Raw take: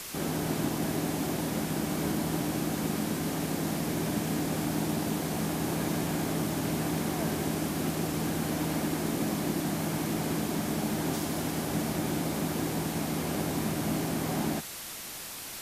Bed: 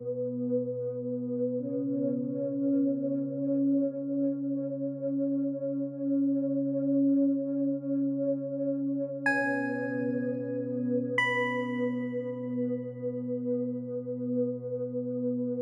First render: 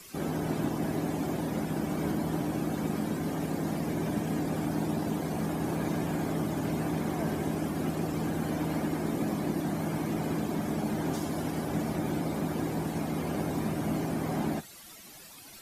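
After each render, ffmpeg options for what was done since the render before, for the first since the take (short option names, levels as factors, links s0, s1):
-af "afftdn=nr=14:nf=-41"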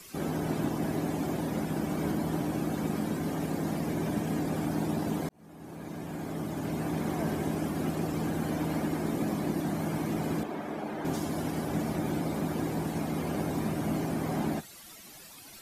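-filter_complex "[0:a]asettb=1/sr,asplit=3[s0][s1][s2];[s0]atrim=end=10.434[s3];[s1]atrim=start=10.43:end=11.05,asetpts=PTS-STARTPTS,afade=t=in:d=0.004:c=qsin,afade=t=out:st=0.616:d=0.004:c=qsin,bass=f=250:g=-13,treble=f=4000:g=-13[s4];[s2]atrim=start=11.046[s5];[s3][s4]acrossfade=d=0.004:c1=hsin:c2=qsin[s6];[s6][s5]acrossfade=d=0.004:c1=qsin:c2=hsin,asplit=2[s7][s8];[s7]atrim=end=5.29,asetpts=PTS-STARTPTS,afade=t=out:st=5.286:d=0.004:c=hsin[s9];[s8]atrim=start=5.29,asetpts=PTS-STARTPTS,afade=t=in:d=1.81[s10];[s9][s10]concat=n=2:v=0:a=1"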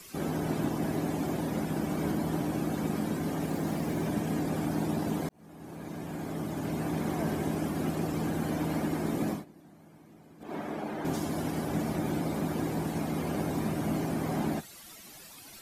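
-filter_complex "[0:a]asettb=1/sr,asplit=3[s0][s1][s2];[s0]atrim=end=3.484[s3];[s1]atrim=start=3.48:end=4.06,asetpts=PTS-STARTPTS,afade=t=in:d=0.004:c=qsin,afade=t=out:st=0.576:d=0.004:c=qsin,aeval=exprs='val(0)*gte(abs(val(0)),0.00473)':c=same[s4];[s2]atrim=start=4.056[s5];[s3][s4]acrossfade=d=0.004:c1=hsin:c2=qsin[s6];[s6][s5]acrossfade=d=0.004:c1=qsin:c2=hsin,asplit=3[s7][s8][s9];[s7]atrim=end=9.45,asetpts=PTS-STARTPTS,afade=t=out:st=9.3:d=0.15:silence=0.0668344[s10];[s8]atrim=start=9.45:end=10.4,asetpts=PTS-STARTPTS,volume=0.0668[s11];[s9]atrim=start=10.4,asetpts=PTS-STARTPTS,afade=t=in:d=0.15:silence=0.0668344[s12];[s10][s11][s12]concat=n=3:v=0:a=1"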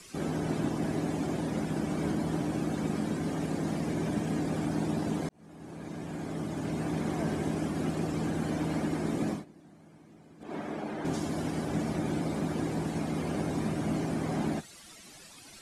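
-af "lowpass=f=10000:w=0.5412,lowpass=f=10000:w=1.3066,equalizer=f=890:w=1.5:g=-2"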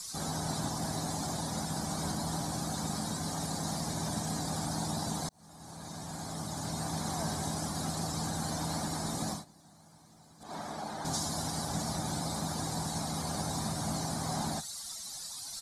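-af "firequalizer=gain_entry='entry(100,0);entry(350,-13);entry(800,4);entry(2700,-10);entry(3900,11)':delay=0.05:min_phase=1"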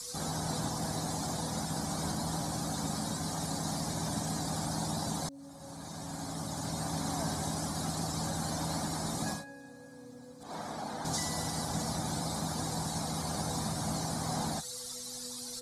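-filter_complex "[1:a]volume=0.1[s0];[0:a][s0]amix=inputs=2:normalize=0"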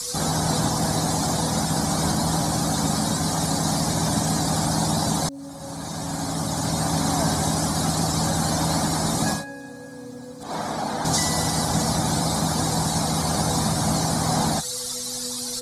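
-af "volume=3.98"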